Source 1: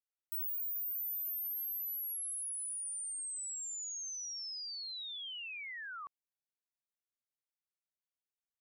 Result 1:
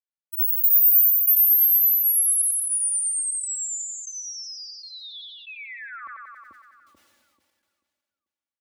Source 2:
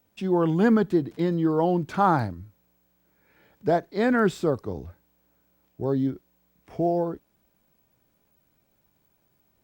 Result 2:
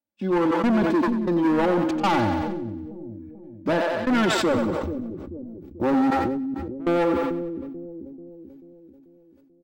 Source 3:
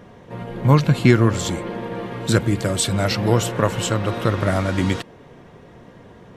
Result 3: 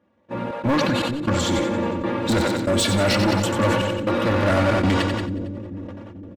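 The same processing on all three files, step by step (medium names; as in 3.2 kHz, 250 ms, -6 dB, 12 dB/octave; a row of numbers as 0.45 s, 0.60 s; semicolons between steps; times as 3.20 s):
gate -40 dBFS, range -27 dB; high-pass 72 Hz 24 dB/octave; treble shelf 5.8 kHz -12 dB; comb 3.5 ms, depth 93%; in parallel at 0 dB: peak limiter -10.5 dBFS; on the sum: level rider gain up to 13 dB; saturation -9.5 dBFS; trance gate "xxxx.xxx..x" 118 bpm -24 dB; overload inside the chain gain 14 dB; on a send: two-band feedback delay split 430 Hz, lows 438 ms, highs 91 ms, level -8 dB; on the sum: decay stretcher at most 25 dB/s; peak normalisation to -9 dBFS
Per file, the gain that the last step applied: +10.5 dB, -4.5 dB, -2.5 dB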